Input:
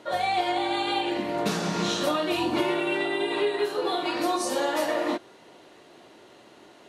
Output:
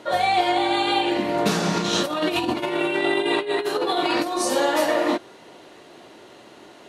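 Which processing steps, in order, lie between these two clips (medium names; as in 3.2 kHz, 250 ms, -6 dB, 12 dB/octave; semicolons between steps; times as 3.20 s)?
1.77–4.38 s: compressor with a negative ratio -28 dBFS, ratio -0.5; trim +5.5 dB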